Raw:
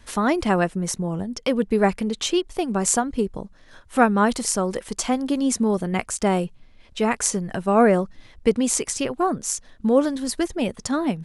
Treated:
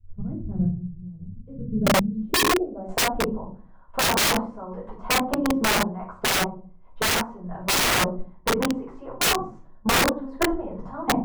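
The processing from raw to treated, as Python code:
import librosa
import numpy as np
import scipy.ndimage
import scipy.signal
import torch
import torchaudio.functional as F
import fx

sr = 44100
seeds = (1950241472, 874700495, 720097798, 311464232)

y = fx.level_steps(x, sr, step_db=20)
y = fx.filter_sweep_lowpass(y, sr, from_hz=110.0, to_hz=990.0, start_s=1.52, end_s=3.12, q=3.7)
y = fx.room_shoebox(y, sr, seeds[0], volume_m3=260.0, walls='furnished', distance_m=5.2)
y = (np.mod(10.0 ** (8.0 / 20.0) * y + 1.0, 2.0) - 1.0) / 10.0 ** (8.0 / 20.0)
y = fx.rider(y, sr, range_db=4, speed_s=2.0)
y = F.gain(torch.from_numpy(y), -7.5).numpy()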